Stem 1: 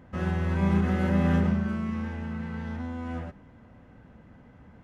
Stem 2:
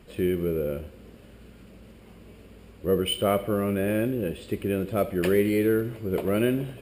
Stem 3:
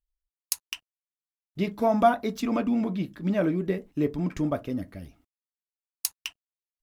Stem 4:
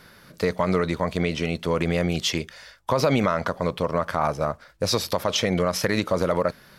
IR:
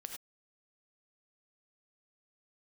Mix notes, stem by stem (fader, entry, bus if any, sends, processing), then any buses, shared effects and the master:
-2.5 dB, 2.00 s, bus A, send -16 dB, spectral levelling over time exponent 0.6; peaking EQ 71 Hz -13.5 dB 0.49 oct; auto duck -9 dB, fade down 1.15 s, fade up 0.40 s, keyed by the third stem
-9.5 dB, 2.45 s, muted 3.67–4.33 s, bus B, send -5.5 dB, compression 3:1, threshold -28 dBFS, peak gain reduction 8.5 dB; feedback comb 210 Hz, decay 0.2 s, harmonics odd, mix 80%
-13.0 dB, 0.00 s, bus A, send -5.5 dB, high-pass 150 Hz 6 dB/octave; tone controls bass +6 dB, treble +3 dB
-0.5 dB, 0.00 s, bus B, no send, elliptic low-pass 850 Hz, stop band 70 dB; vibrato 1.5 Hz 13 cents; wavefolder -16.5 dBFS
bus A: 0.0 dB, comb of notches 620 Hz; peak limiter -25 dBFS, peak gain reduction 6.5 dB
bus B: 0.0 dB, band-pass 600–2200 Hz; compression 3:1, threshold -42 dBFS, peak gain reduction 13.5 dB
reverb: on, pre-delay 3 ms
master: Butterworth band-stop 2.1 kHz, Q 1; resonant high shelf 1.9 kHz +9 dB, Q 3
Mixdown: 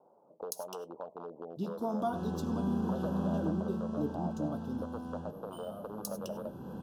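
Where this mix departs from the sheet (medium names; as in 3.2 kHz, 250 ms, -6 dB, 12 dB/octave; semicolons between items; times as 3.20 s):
stem 2 -9.5 dB -> 0.0 dB; master: missing resonant high shelf 1.9 kHz +9 dB, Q 3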